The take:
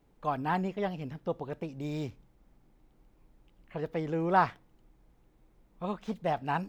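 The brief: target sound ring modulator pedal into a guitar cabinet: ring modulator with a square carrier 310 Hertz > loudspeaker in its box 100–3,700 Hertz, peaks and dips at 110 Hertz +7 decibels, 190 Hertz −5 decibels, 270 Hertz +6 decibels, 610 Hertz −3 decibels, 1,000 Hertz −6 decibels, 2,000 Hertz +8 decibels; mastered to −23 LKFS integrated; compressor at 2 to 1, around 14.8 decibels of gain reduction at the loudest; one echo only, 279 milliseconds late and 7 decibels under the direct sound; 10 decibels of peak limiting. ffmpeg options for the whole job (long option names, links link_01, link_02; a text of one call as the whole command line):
ffmpeg -i in.wav -af "acompressor=threshold=-47dB:ratio=2,alimiter=level_in=12.5dB:limit=-24dB:level=0:latency=1,volume=-12.5dB,aecho=1:1:279:0.447,aeval=exprs='val(0)*sgn(sin(2*PI*310*n/s))':channel_layout=same,highpass=100,equalizer=frequency=110:width_type=q:width=4:gain=7,equalizer=frequency=190:width_type=q:width=4:gain=-5,equalizer=frequency=270:width_type=q:width=4:gain=6,equalizer=frequency=610:width_type=q:width=4:gain=-3,equalizer=frequency=1000:width_type=q:width=4:gain=-6,equalizer=frequency=2000:width_type=q:width=4:gain=8,lowpass=frequency=3700:width=0.5412,lowpass=frequency=3700:width=1.3066,volume=23.5dB" out.wav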